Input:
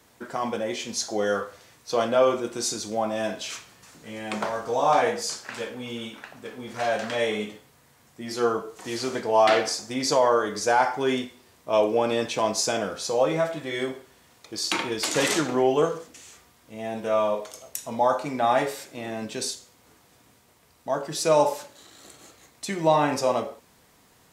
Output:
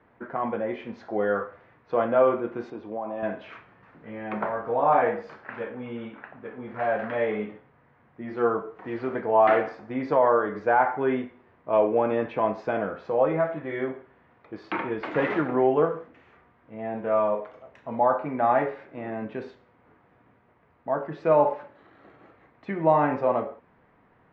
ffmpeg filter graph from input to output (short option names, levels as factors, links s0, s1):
-filter_complex "[0:a]asettb=1/sr,asplit=3[s0][s1][s2];[s0]atrim=end=2.704[s3];[s1]atrim=start=2.7:end=3.23,asetpts=PTS-STARTPTS,afade=t=in:d=0.004:c=qsin,afade=t=out:st=0.526:d=0.004:c=qsin,acompressor=threshold=0.0447:ratio=5:attack=3.2:release=140:knee=1:detection=peak,highpass=110,equalizer=f=120:t=q:w=4:g=-5,equalizer=f=190:t=q:w=4:g=-7,equalizer=f=960:t=q:w=4:g=3,equalizer=f=1400:t=q:w=4:g=-8,equalizer=f=2000:t=q:w=4:g=-7,equalizer=f=4300:t=q:w=4:g=-9,lowpass=f=4900:w=0.5412,lowpass=f=4900:w=1.3066[s4];[s2]atrim=start=3.226[s5];[s3][s4]acrossfade=d=0.004:c1=hsin:c2=qsin[s6];[s6][s5]acrossfade=d=0.004:c1=qsin:c2=hsin,lowpass=f=2000:w=0.5412,lowpass=f=2000:w=1.3066,equalizer=f=67:t=o:w=0.35:g=-7"